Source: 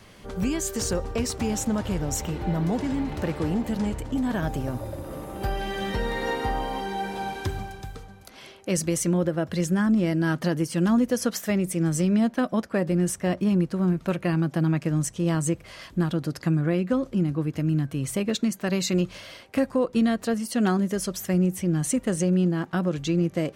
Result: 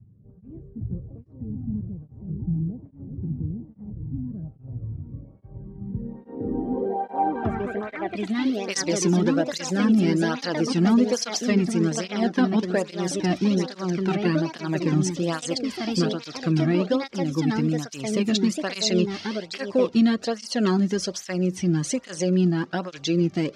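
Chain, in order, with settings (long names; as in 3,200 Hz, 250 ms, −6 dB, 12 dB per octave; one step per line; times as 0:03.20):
delay with pitch and tempo change per echo 134 ms, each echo +3 semitones, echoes 2, each echo −6 dB
low-pass filter sweep 120 Hz → 5,200 Hz, 0:05.82–0:08.58
through-zero flanger with one copy inverted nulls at 1.2 Hz, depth 2.1 ms
level +3.5 dB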